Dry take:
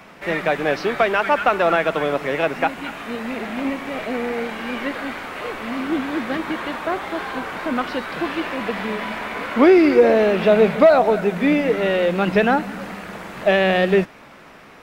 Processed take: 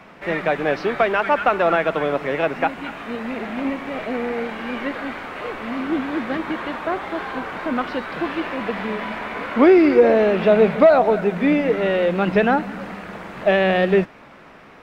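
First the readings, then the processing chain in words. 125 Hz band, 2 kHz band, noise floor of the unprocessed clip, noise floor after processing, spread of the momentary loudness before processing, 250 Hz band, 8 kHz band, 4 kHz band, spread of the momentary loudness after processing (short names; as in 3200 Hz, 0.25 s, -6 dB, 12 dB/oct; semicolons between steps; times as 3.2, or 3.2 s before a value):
0.0 dB, -1.5 dB, -44 dBFS, -45 dBFS, 14 LU, 0.0 dB, n/a, -3.5 dB, 14 LU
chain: high shelf 5100 Hz -11.5 dB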